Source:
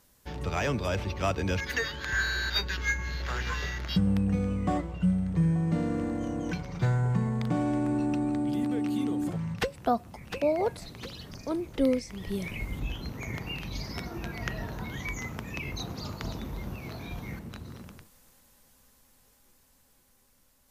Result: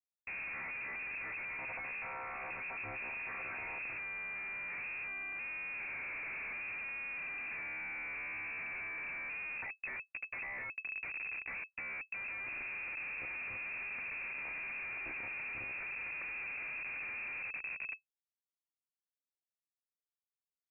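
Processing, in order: vocoder on a held chord bare fifth, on C#3; bass shelf 220 Hz -11 dB; in parallel at -1 dB: compression, threshold -42 dBFS, peak gain reduction 17 dB; on the sum: Schmitt trigger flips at -42 dBFS; frequency inversion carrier 2.6 kHz; trim -6.5 dB

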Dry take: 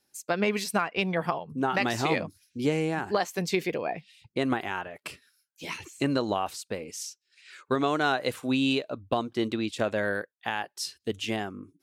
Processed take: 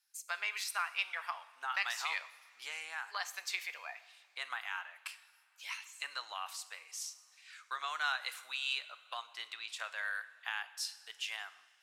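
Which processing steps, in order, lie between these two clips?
high-pass 1.1 kHz 24 dB/octave; on a send: reverberation, pre-delay 3 ms, DRR 12 dB; on the sum: trim -5 dB

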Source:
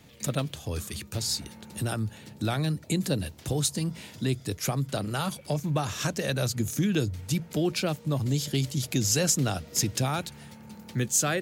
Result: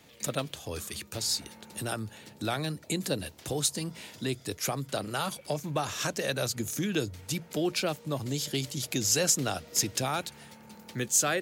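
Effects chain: tone controls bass -9 dB, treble 0 dB

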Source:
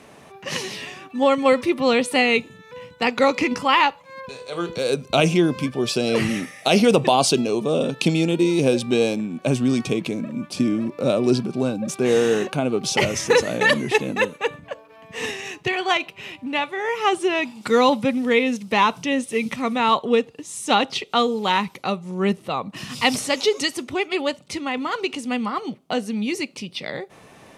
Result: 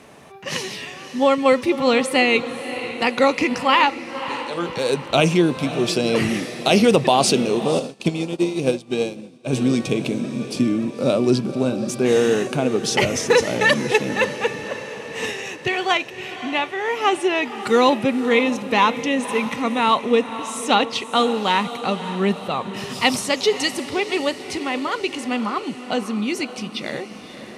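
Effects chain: echo that smears into a reverb 557 ms, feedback 54%, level -12 dB; 7.79–9.53 s: upward expansion 2.5:1, over -30 dBFS; trim +1 dB

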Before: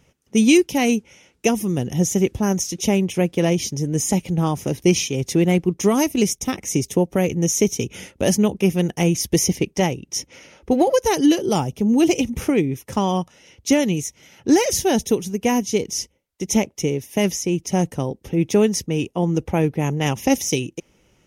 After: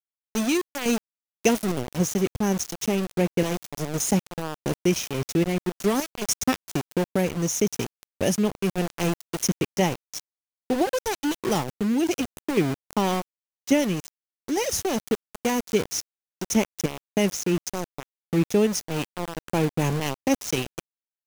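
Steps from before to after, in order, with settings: random-step tremolo, depth 80%; small samples zeroed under -25.5 dBFS; gain riding within 4 dB 0.5 s; trim -1.5 dB

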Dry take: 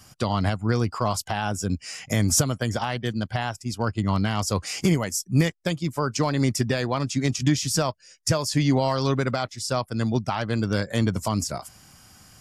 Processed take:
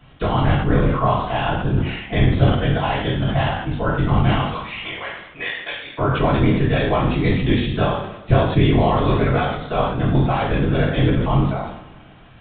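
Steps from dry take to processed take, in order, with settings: 4.42–5.99 s: high-pass 1 kHz 12 dB/octave; whisper effect; two-slope reverb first 0.6 s, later 2.2 s, DRR -6 dB; resampled via 8 kHz; decay stretcher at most 64 dB/s; trim -1 dB

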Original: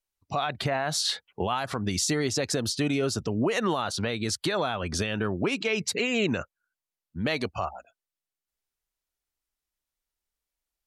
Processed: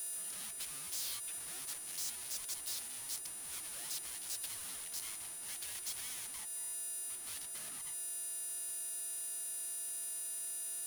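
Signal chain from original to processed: power-law waveshaper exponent 0.5; pre-echo 169 ms -19 dB; valve stage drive 35 dB, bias 0.65; whistle 9.7 kHz -42 dBFS; compression, threshold -38 dBFS, peak gain reduction 5 dB; pre-emphasis filter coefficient 0.97; polarity switched at an audio rate 530 Hz; trim +1 dB

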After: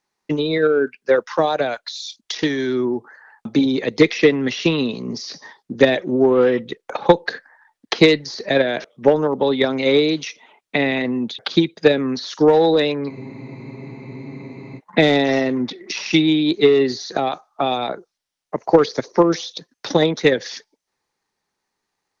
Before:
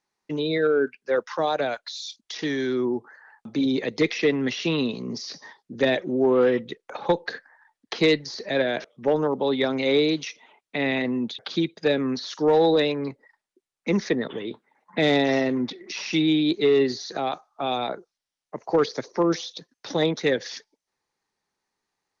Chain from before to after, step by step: transient shaper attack +7 dB, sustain +1 dB; spectral freeze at 13.11 s, 1.68 s; trim +3.5 dB

